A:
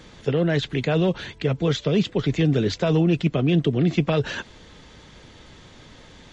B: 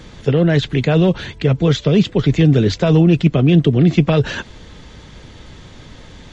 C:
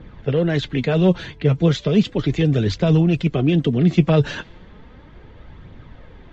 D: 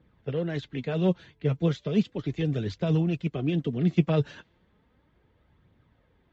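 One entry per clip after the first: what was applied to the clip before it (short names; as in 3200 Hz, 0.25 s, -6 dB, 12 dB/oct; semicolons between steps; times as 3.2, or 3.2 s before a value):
low shelf 170 Hz +7 dB; gain +5 dB
flange 0.35 Hz, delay 0.2 ms, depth 6.8 ms, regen +53%; low-pass opened by the level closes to 1700 Hz, open at -12.5 dBFS
HPF 57 Hz; upward expander 1.5:1, over -37 dBFS; gain -6.5 dB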